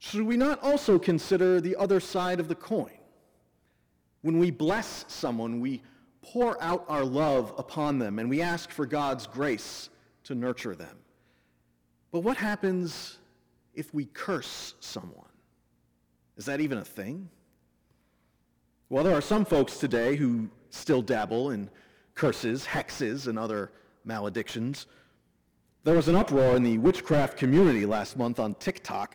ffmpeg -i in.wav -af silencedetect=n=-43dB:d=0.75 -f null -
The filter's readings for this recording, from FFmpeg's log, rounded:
silence_start: 2.92
silence_end: 4.24 | silence_duration: 1.32
silence_start: 10.97
silence_end: 12.14 | silence_duration: 1.16
silence_start: 15.25
silence_end: 16.37 | silence_duration: 1.12
silence_start: 17.27
silence_end: 18.91 | silence_duration: 1.64
silence_start: 24.83
silence_end: 25.85 | silence_duration: 1.02